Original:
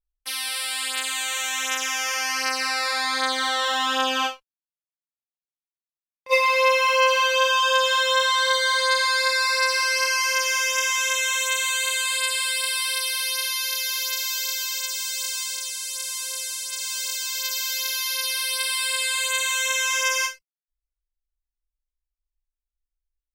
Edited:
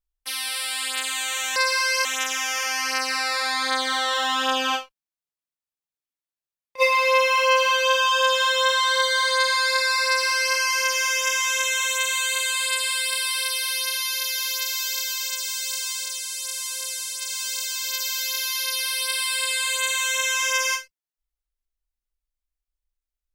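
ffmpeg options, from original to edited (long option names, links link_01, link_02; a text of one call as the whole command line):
ffmpeg -i in.wav -filter_complex "[0:a]asplit=3[link_01][link_02][link_03];[link_01]atrim=end=1.562[link_04];[link_02]atrim=start=9.578:end=10.072[link_05];[link_03]atrim=start=1.558[link_06];[link_04][link_05]acrossfade=duration=0.004:curve1=hsin:curve2=hsin[link_07];[link_07][link_06]acrossfade=duration=0.004:curve1=hsin:curve2=hsin" out.wav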